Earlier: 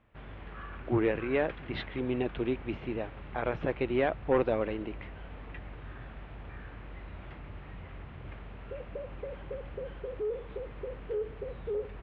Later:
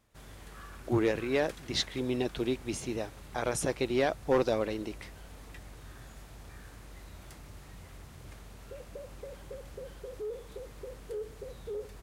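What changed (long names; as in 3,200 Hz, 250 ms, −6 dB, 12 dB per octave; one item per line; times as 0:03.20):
background −4.5 dB
master: remove Butterworth low-pass 3,000 Hz 36 dB per octave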